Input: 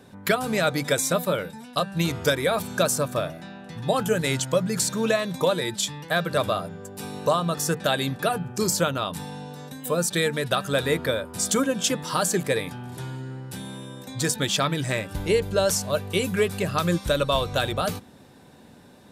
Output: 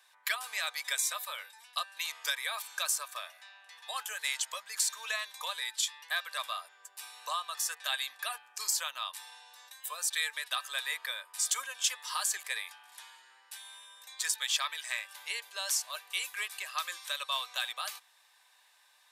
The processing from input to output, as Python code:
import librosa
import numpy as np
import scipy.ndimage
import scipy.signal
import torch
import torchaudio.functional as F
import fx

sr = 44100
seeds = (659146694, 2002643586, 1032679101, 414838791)

y = scipy.signal.sosfilt(scipy.signal.butter(4, 1100.0, 'highpass', fs=sr, output='sos'), x)
y = fx.notch(y, sr, hz=1400.0, q=5.1)
y = y * 10.0 ** (-4.5 / 20.0)